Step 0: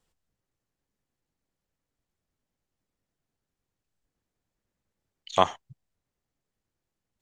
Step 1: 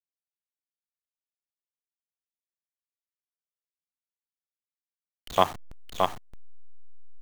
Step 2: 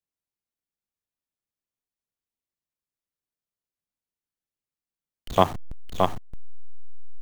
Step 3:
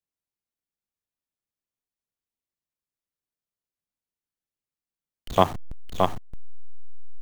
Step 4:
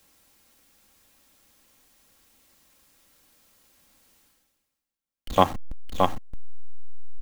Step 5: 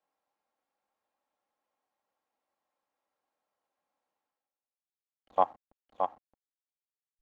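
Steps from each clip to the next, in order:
hold until the input has moved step −33.5 dBFS; single-tap delay 621 ms −3.5 dB
low-shelf EQ 470 Hz +11.5 dB; level −1 dB
no processing that can be heard
comb filter 3.7 ms, depth 40%; reversed playback; upward compression, threshold −36 dBFS; reversed playback
resonant band-pass 780 Hz, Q 2; expander for the loud parts 1.5 to 1, over −32 dBFS; level −3.5 dB

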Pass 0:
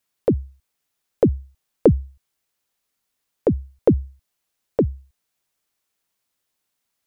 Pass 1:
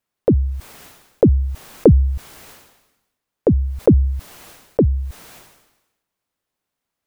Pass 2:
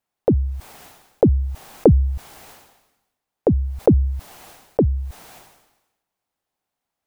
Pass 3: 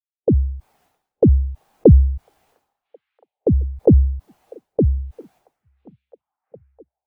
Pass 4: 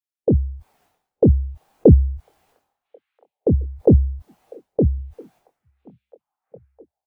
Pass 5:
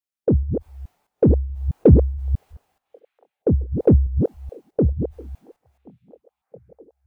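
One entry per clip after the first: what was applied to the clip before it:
high-shelf EQ 2,200 Hz −10.5 dB; level that may fall only so fast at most 57 dB per second; level +3 dB
parametric band 780 Hz +7 dB 0.54 octaves; level −2.5 dB
echo through a band-pass that steps 666 ms, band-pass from 2,800 Hz, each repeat −0.7 octaves, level −6 dB; every bin expanded away from the loudest bin 1.5 to 1
double-tracking delay 24 ms −9 dB; level −1 dB
delay that plays each chunk backwards 214 ms, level −7 dB; in parallel at −11 dB: soft clipping −13.5 dBFS, distortion −8 dB; on the sum: level −2.5 dB

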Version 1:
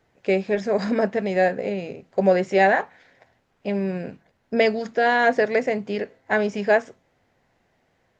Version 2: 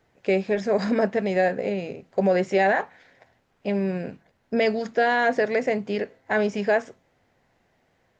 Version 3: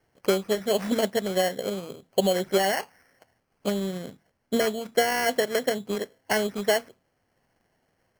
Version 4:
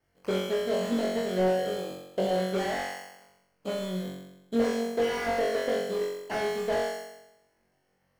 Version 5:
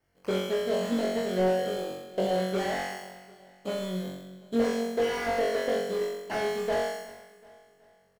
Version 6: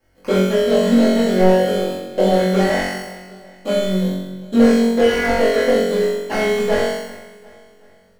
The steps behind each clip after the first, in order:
brickwall limiter −12 dBFS, peak gain reduction 5 dB
decimation without filtering 12×; transient designer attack +6 dB, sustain −2 dB; level −4.5 dB
on a send: flutter between parallel walls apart 3.7 metres, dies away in 0.91 s; on the sum: slew-rate limiting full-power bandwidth 120 Hz; level −7.5 dB
repeating echo 372 ms, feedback 45%, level −19 dB
rectangular room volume 160 cubic metres, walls furnished, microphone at 2.3 metres; level +6.5 dB

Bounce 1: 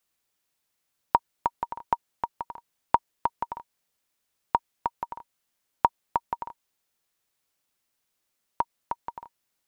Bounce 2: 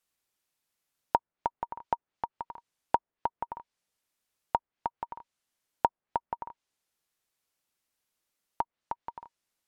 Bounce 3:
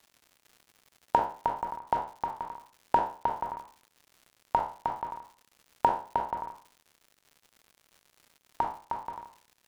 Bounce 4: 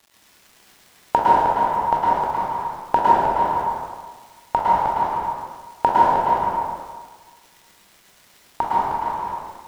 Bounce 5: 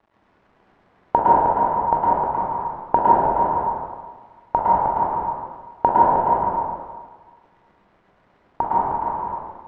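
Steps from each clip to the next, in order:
treble cut that deepens with the level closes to 1,300 Hz, closed at −28.5 dBFS; level −3.5 dB
peak hold with a decay on every bin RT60 0.40 s; surface crackle 190 per second −45 dBFS
dense smooth reverb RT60 1.5 s, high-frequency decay 0.8×, pre-delay 95 ms, DRR −6 dB; level +5.5 dB
low-pass filter 1,100 Hz 12 dB per octave; level +2 dB

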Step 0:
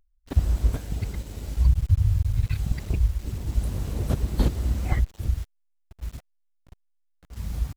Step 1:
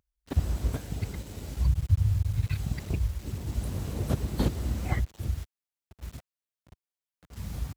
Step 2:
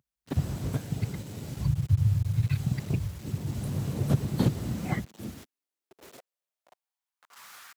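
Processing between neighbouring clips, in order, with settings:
high-pass filter 75 Hz; level −1 dB
high-pass filter sweep 130 Hz → 1,500 Hz, 0:04.59–0:07.72

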